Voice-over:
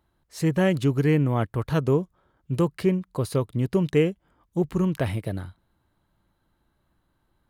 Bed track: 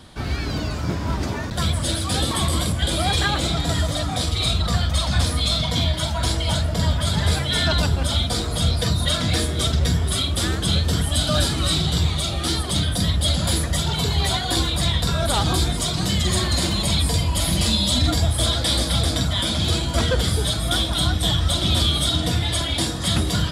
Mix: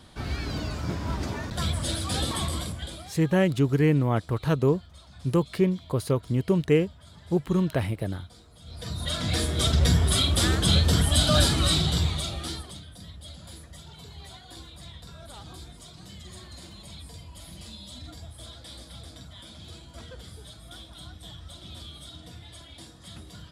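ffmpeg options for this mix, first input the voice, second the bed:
ffmpeg -i stem1.wav -i stem2.wav -filter_complex "[0:a]adelay=2750,volume=-0.5dB[link_01];[1:a]volume=22.5dB,afade=type=out:start_time=2.28:duration=0.84:silence=0.0707946,afade=type=in:start_time=8.65:duration=1.27:silence=0.0375837,afade=type=out:start_time=11.48:duration=1.32:silence=0.0707946[link_02];[link_01][link_02]amix=inputs=2:normalize=0" out.wav

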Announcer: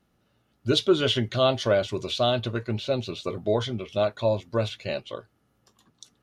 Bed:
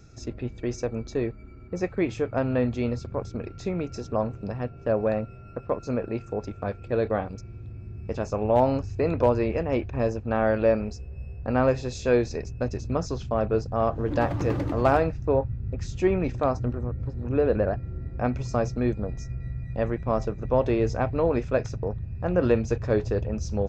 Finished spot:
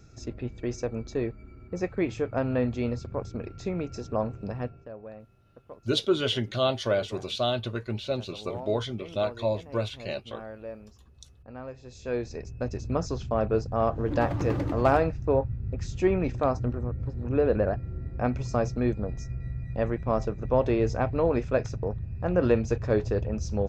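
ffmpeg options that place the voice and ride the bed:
ffmpeg -i stem1.wav -i stem2.wav -filter_complex "[0:a]adelay=5200,volume=-3.5dB[link_01];[1:a]volume=15.5dB,afade=type=out:start_time=4.65:duration=0.24:silence=0.149624,afade=type=in:start_time=11.77:duration=1.19:silence=0.133352[link_02];[link_01][link_02]amix=inputs=2:normalize=0" out.wav

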